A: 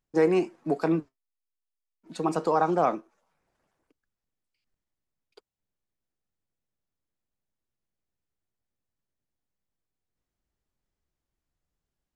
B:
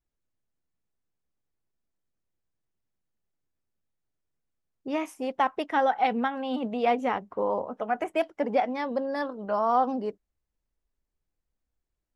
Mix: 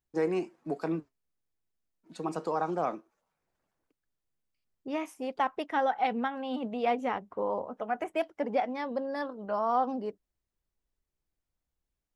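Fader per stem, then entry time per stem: -7.0 dB, -4.0 dB; 0.00 s, 0.00 s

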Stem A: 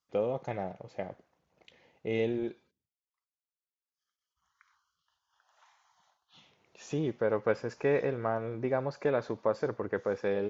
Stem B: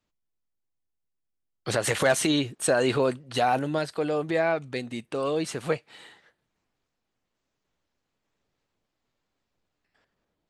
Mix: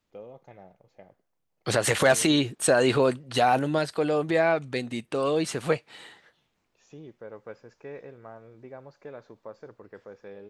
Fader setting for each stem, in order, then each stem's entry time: -13.5 dB, +2.0 dB; 0.00 s, 0.00 s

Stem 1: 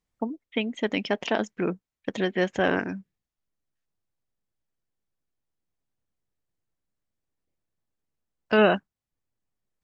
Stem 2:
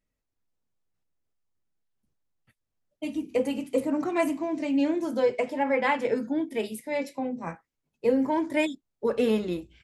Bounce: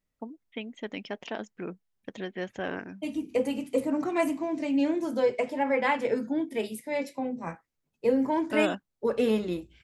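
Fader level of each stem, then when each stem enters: -10.0 dB, -1.0 dB; 0.00 s, 0.00 s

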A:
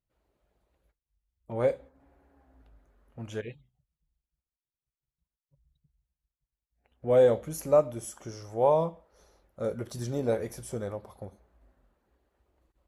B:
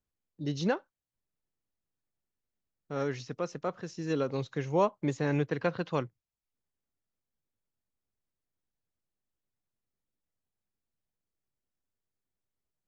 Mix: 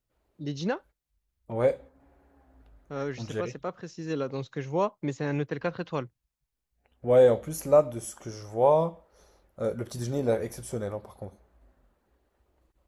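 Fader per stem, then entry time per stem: +2.0 dB, -0.5 dB; 0.00 s, 0.00 s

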